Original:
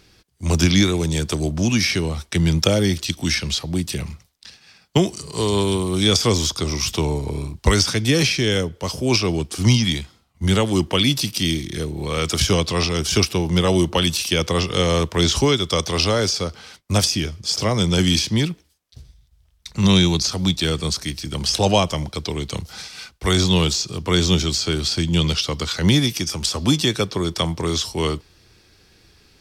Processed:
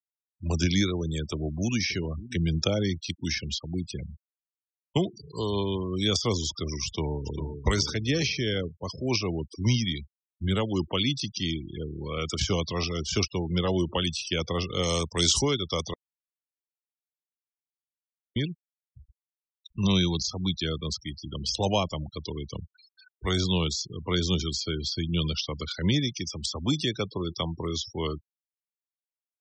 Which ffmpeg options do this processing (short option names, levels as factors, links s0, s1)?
-filter_complex "[0:a]asplit=2[s0][s1];[s1]afade=t=in:st=1.2:d=0.01,afade=t=out:st=1.78:d=0.01,aecho=0:1:580|1160|1740|2320:0.177828|0.0800226|0.0360102|0.0162046[s2];[s0][s2]amix=inputs=2:normalize=0,asplit=2[s3][s4];[s4]afade=t=in:st=6.85:d=0.01,afade=t=out:st=7.64:d=0.01,aecho=0:1:400|800|1200|1600|2000|2400|2800:0.446684|0.245676|0.135122|0.074317|0.0408743|0.0224809|0.0123645[s5];[s3][s5]amix=inputs=2:normalize=0,asettb=1/sr,asplit=3[s6][s7][s8];[s6]atrim=end=14.834[s9];[s7]atrim=start=14.83:end=15.42,asetpts=PTS-STARTPTS,afade=t=in:d=0.004:c=qsin,afade=t=out:st=0.586:d=0.004:c=qsin,aemphasis=mode=production:type=75fm[s10];[s8]atrim=start=15.416[s11];[s9][s10]acrossfade=d=0.004:c1=hsin:c2=qsin[s12];[s12][s11]acrossfade=d=0.004:c1=qsin:c2=hsin,asplit=3[s13][s14][s15];[s13]atrim=end=15.94,asetpts=PTS-STARTPTS,afade=t=out:st=15.936:d=0.004:c=hsin[s16];[s14]atrim=start=15.94:end=18.36,asetpts=PTS-STARTPTS,volume=0[s17];[s15]atrim=start=18.36,asetpts=PTS-STARTPTS,afade=t=in:d=0.004:c=hsin[s18];[s16][s17][s18]concat=n=3:v=0:a=1,lowpass=f=8500:w=0.5412,lowpass=f=8500:w=1.3066,afftfilt=real='re*gte(hypot(re,im),0.0631)':imag='im*gte(hypot(re,im),0.0631)':win_size=1024:overlap=0.75,volume=0.376"